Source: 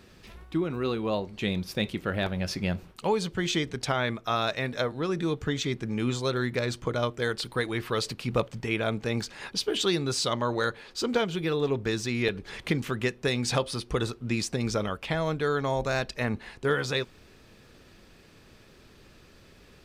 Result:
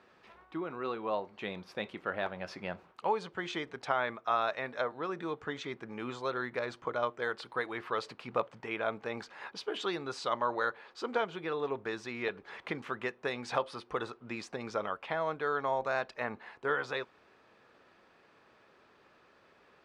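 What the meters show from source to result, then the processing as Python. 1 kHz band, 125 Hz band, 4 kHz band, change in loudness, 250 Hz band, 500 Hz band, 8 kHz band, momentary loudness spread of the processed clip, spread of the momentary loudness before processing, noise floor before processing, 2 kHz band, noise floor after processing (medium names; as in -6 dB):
-1.0 dB, -18.0 dB, -12.0 dB, -6.5 dB, -12.0 dB, -6.0 dB, -18.0 dB, 9 LU, 4 LU, -55 dBFS, -4.5 dB, -64 dBFS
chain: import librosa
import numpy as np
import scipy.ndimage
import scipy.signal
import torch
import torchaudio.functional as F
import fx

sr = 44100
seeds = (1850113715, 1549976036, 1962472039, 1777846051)

y = fx.bandpass_q(x, sr, hz=1000.0, q=1.1)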